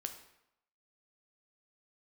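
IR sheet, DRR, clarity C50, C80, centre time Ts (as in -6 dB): 6.0 dB, 9.5 dB, 12.0 dB, 15 ms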